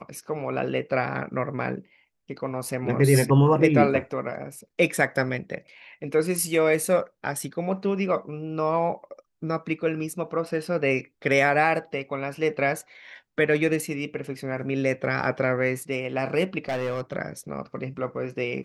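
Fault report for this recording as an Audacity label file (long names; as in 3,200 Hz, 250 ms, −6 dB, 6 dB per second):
16.680000	17.170000	clipping −23 dBFS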